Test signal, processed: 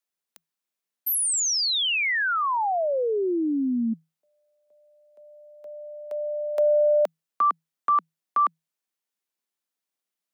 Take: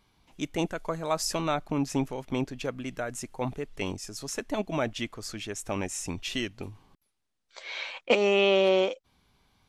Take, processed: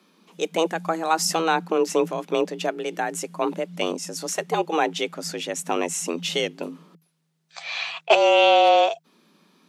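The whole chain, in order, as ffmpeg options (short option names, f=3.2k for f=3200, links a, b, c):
-af "acontrast=77,afreqshift=160"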